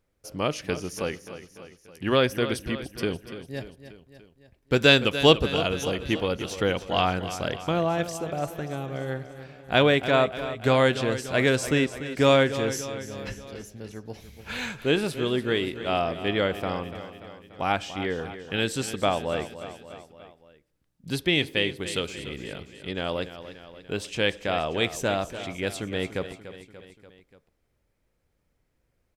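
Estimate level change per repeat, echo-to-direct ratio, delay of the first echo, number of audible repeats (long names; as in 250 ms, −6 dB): −4.5 dB, −11.0 dB, 291 ms, 4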